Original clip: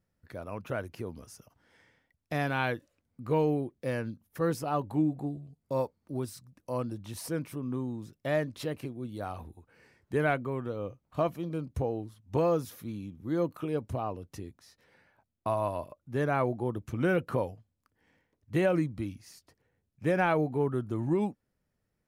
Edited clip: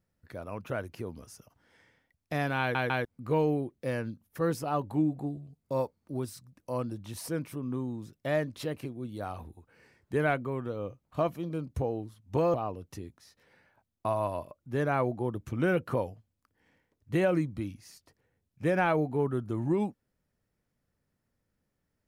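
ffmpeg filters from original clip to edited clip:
ffmpeg -i in.wav -filter_complex "[0:a]asplit=5[link_01][link_02][link_03][link_04][link_05];[link_01]atrim=end=2.752[link_06];[link_02]atrim=start=2.598:end=2.752[link_07];[link_03]atrim=start=2.598:end=2.752[link_08];[link_04]atrim=start=3.048:end=12.542[link_09];[link_05]atrim=start=13.948[link_10];[link_06][link_07]acrossfade=duration=0.004:curve1=hsin:curve2=hsin[link_11];[link_11][link_08]acrossfade=duration=0.004:curve1=hsin:curve2=hsin[link_12];[link_12][link_09]acrossfade=duration=0.004:curve1=hsin:curve2=hsin[link_13];[link_13][link_10]acrossfade=duration=0.004:curve1=hsin:curve2=hsin" out.wav

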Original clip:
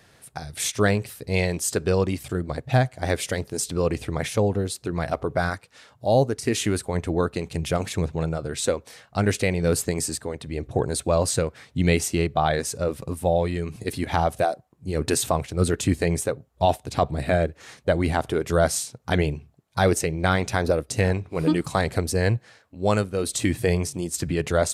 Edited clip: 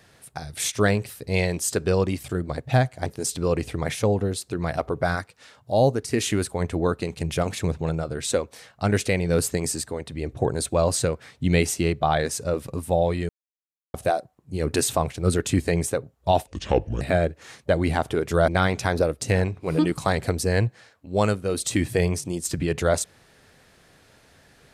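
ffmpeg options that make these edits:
ffmpeg -i in.wav -filter_complex "[0:a]asplit=7[link_01][link_02][link_03][link_04][link_05][link_06][link_07];[link_01]atrim=end=3.062[link_08];[link_02]atrim=start=3.398:end=13.63,asetpts=PTS-STARTPTS,afade=type=out:start_time=10.228:duration=0.004:curve=hsin[link_09];[link_03]atrim=start=13.63:end=14.28,asetpts=PTS-STARTPTS,volume=0[link_10];[link_04]atrim=start=14.28:end=16.814,asetpts=PTS-STARTPTS,afade=type=in:duration=0.004:curve=hsin[link_11];[link_05]atrim=start=16.81:end=17.2,asetpts=PTS-STARTPTS,asetrate=31752,aresample=44100[link_12];[link_06]atrim=start=17.196:end=18.672[link_13];[link_07]atrim=start=20.168[link_14];[link_09][link_10][link_11]concat=n=3:v=0:a=1[link_15];[link_08][link_15]acrossfade=duration=0.004:curve1=hsin:curve2=hsin[link_16];[link_16][link_12]acrossfade=duration=0.004:curve1=hsin:curve2=hsin[link_17];[link_17][link_13]acrossfade=duration=0.004:curve1=hsin:curve2=hsin[link_18];[link_18][link_14]acrossfade=duration=0.004:curve1=hsin:curve2=hsin" out.wav

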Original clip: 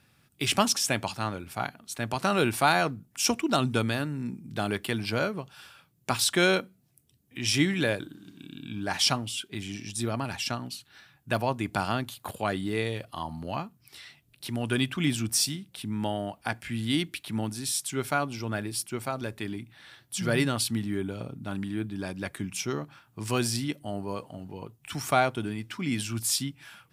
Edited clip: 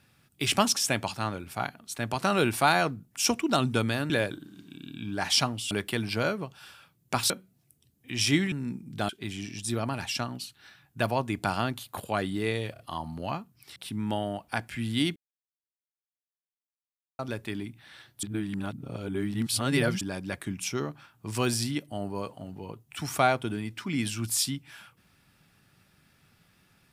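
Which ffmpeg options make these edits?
ffmpeg -i in.wav -filter_complex "[0:a]asplit=13[link_01][link_02][link_03][link_04][link_05][link_06][link_07][link_08][link_09][link_10][link_11][link_12][link_13];[link_01]atrim=end=4.102[link_14];[link_02]atrim=start=7.788:end=9.402[link_15];[link_03]atrim=start=4.668:end=6.262[link_16];[link_04]atrim=start=6.568:end=7.792[link_17];[link_05]atrim=start=4.098:end=4.672[link_18];[link_06]atrim=start=9.398:end=13.072[link_19];[link_07]atrim=start=13.038:end=13.072[link_20];[link_08]atrim=start=13.038:end=14.012[link_21];[link_09]atrim=start=15.688:end=17.09,asetpts=PTS-STARTPTS,afade=type=out:start_time=1.398:duration=0.004:curve=hsin[link_22];[link_10]atrim=start=17.09:end=19.12,asetpts=PTS-STARTPTS,volume=0[link_23];[link_11]atrim=start=19.12:end=20.162,asetpts=PTS-STARTPTS,afade=type=in:duration=0.004:curve=hsin[link_24];[link_12]atrim=start=20.158:end=21.942,asetpts=PTS-STARTPTS,areverse[link_25];[link_13]atrim=start=21.938[link_26];[link_14][link_15]acrossfade=duration=0.004:curve1=hsin:curve2=hsin[link_27];[link_27][link_16]acrossfade=duration=0.004:curve1=hsin:curve2=hsin[link_28];[link_28][link_17]acrossfade=duration=0.004:curve1=hsin:curve2=hsin[link_29];[link_29][link_18]acrossfade=duration=0.004:curve1=hsin:curve2=hsin[link_30];[link_30][link_19]acrossfade=duration=0.004:curve1=hsin:curve2=hsin[link_31];[link_31][link_20]acrossfade=duration=0.004:curve1=hsin:curve2=hsin[link_32];[link_32][link_21]acrossfade=duration=0.004:curve1=hsin:curve2=hsin[link_33];[link_22][link_23][link_24]concat=n=3:v=0:a=1[link_34];[link_33][link_34]acrossfade=duration=0.004:curve1=hsin:curve2=hsin[link_35];[link_35][link_25]acrossfade=duration=0.004:curve1=hsin:curve2=hsin[link_36];[link_36][link_26]acrossfade=duration=0.004:curve1=hsin:curve2=hsin" out.wav

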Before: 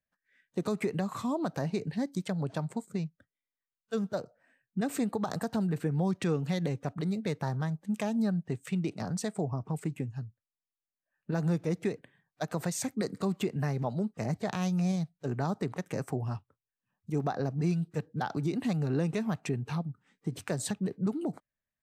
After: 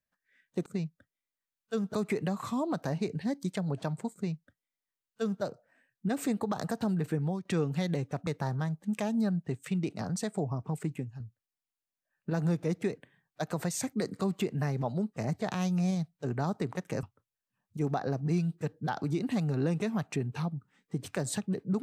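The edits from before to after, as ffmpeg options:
ffmpeg -i in.wav -filter_complex "[0:a]asplit=7[link_01][link_02][link_03][link_04][link_05][link_06][link_07];[link_01]atrim=end=0.662[link_08];[link_02]atrim=start=2.858:end=4.142[link_09];[link_03]atrim=start=0.658:end=6.17,asetpts=PTS-STARTPTS,afade=type=out:start_time=5.182:duration=0.33:curve=qsin:silence=0.141254[link_10];[link_04]atrim=start=6.17:end=6.992,asetpts=PTS-STARTPTS,afade=type=in:duration=0.004:curve=hsin:silence=0.141254[link_11];[link_05]atrim=start=7.278:end=10.21,asetpts=PTS-STARTPTS,afade=type=out:start_time=2.672:duration=0.26:silence=0.421697[link_12];[link_06]atrim=start=10.21:end=16.042,asetpts=PTS-STARTPTS,afade=type=in:duration=0.004:curve=hsin:silence=0.421697[link_13];[link_07]atrim=start=16.358[link_14];[link_08][link_09]acrossfade=duration=0.004:curve1=hsin:curve2=hsin[link_15];[link_10][link_11]concat=n=2:v=0:a=1[link_16];[link_15][link_16]acrossfade=duration=0.004:curve1=hsin:curve2=hsin[link_17];[link_12][link_13]concat=n=2:v=0:a=1[link_18];[link_17][link_18]acrossfade=duration=0.004:curve1=hsin:curve2=hsin[link_19];[link_19][link_14]acrossfade=duration=0.004:curve1=hsin:curve2=hsin" out.wav

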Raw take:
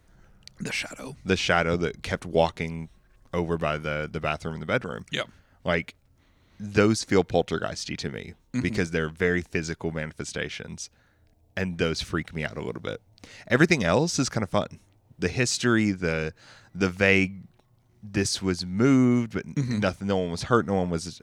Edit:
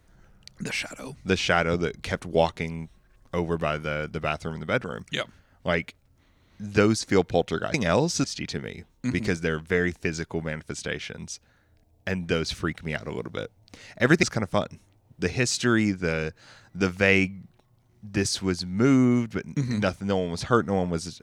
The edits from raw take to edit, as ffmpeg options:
ffmpeg -i in.wav -filter_complex "[0:a]asplit=4[link_01][link_02][link_03][link_04];[link_01]atrim=end=7.742[link_05];[link_02]atrim=start=13.728:end=14.232[link_06];[link_03]atrim=start=7.738:end=13.732[link_07];[link_04]atrim=start=14.228[link_08];[link_05][link_06]acrossfade=duration=0.004:curve1=hsin:curve2=hsin[link_09];[link_09][link_07]acrossfade=duration=0.004:curve1=hsin:curve2=hsin[link_10];[link_10][link_08]acrossfade=duration=0.004:curve1=hsin:curve2=hsin" out.wav

